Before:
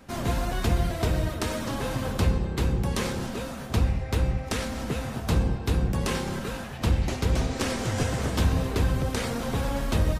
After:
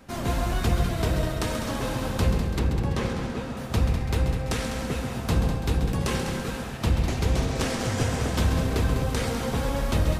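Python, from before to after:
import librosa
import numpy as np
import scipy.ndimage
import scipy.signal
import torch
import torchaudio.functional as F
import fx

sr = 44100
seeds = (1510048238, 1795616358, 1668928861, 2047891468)

y = fx.lowpass(x, sr, hz=2600.0, slope=6, at=(2.59, 3.57))
y = fx.echo_heads(y, sr, ms=67, heads='second and third', feedback_pct=51, wet_db=-9.0)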